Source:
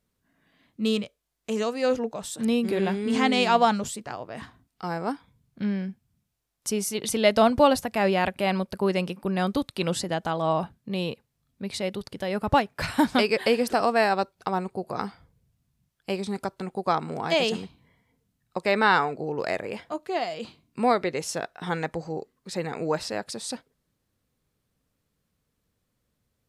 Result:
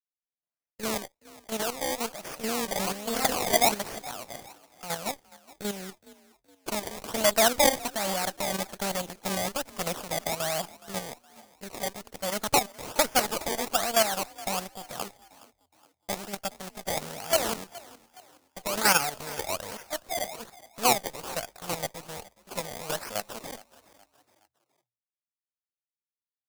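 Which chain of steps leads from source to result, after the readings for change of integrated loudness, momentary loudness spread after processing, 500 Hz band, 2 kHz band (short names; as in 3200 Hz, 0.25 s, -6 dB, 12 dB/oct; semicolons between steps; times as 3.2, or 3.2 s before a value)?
-2.5 dB, 18 LU, -5.5 dB, -2.5 dB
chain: minimum comb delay 1.4 ms; decimation with a swept rate 22×, swing 100% 1.2 Hz; tone controls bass -9 dB, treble +8 dB; level quantiser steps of 10 dB; expander -50 dBFS; frequency-shifting echo 0.418 s, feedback 43%, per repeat +39 Hz, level -20 dB; gain +1 dB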